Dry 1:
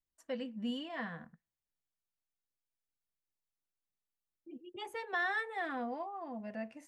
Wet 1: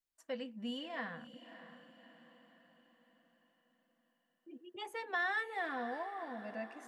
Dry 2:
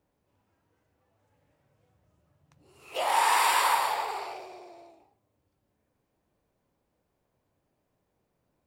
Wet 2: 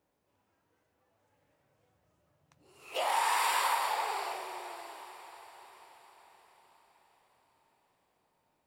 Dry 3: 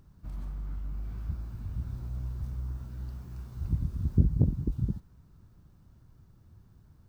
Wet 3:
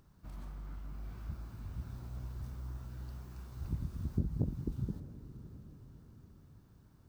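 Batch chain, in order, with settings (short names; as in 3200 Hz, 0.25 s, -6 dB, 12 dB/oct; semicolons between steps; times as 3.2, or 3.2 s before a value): low shelf 220 Hz -9 dB; compressor 2:1, threshold -30 dBFS; diffused feedback echo 0.604 s, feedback 49%, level -13 dB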